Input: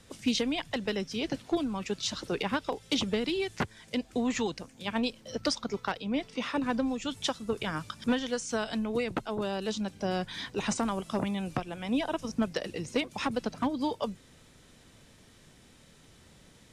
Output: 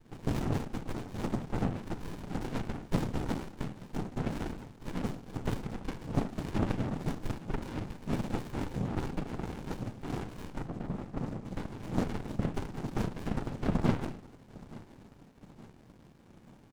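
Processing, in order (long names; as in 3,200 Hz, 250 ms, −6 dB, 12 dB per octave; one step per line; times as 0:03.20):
0:10.58–0:11.45: Butterworth low-pass 540 Hz 96 dB per octave
in parallel at 0 dB: downward compressor, threshold −38 dBFS, peak gain reduction 14.5 dB
on the sum: feedback delay network reverb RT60 0.39 s, low-frequency decay 1.3×, high-frequency decay 0.75×, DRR 2 dB
cochlear-implant simulation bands 4
on a send: repeating echo 873 ms, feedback 54%, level −20 dB
on the sum: windowed peak hold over 65 samples
level −5.5 dB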